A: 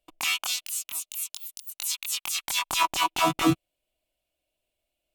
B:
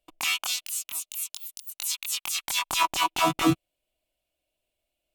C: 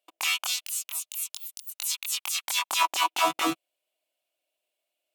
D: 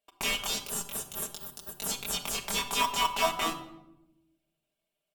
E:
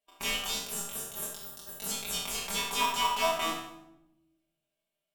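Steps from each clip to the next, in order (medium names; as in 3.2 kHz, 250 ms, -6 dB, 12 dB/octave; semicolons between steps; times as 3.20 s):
no audible change
high-pass 470 Hz 12 dB/octave
comb 5 ms; in parallel at -7 dB: sample-and-hold 20×; on the sum: simulated room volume 3200 m³, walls furnished, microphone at 1.6 m; trim -6 dB
spectral sustain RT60 0.61 s; feedback echo behind a band-pass 72 ms, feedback 46%, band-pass 1 kHz, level -8.5 dB; harmonic-percussive split percussive -9 dB; trim -2 dB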